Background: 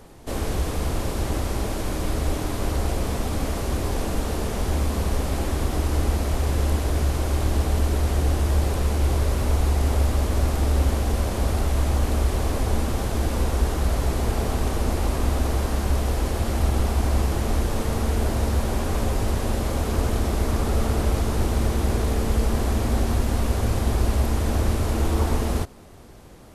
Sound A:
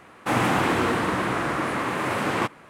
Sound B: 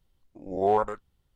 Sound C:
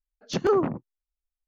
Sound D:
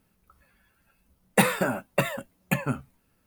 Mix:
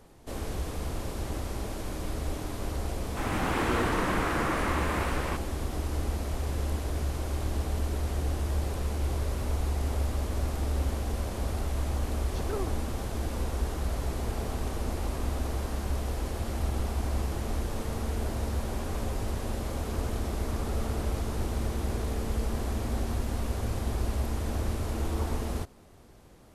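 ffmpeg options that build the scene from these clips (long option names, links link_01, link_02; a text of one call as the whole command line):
ffmpeg -i bed.wav -i cue0.wav -i cue1.wav -i cue2.wav -filter_complex "[0:a]volume=-8.5dB[link_01];[1:a]dynaudnorm=framelen=110:gausssize=11:maxgain=11.5dB,atrim=end=2.69,asetpts=PTS-STARTPTS,volume=-13dB,afade=type=in:duration=0.004:curve=hsin,afade=type=out:start_time=2.686:duration=0.004:curve=hsin,adelay=2900[link_02];[3:a]atrim=end=1.47,asetpts=PTS-STARTPTS,volume=-14.5dB,afade=type=in:duration=0.004:curve=hsin,afade=type=out:start_time=1.466:duration=0.004:curve=hsin,adelay=12040[link_03];[link_01][link_02][link_03]amix=inputs=3:normalize=0" out.wav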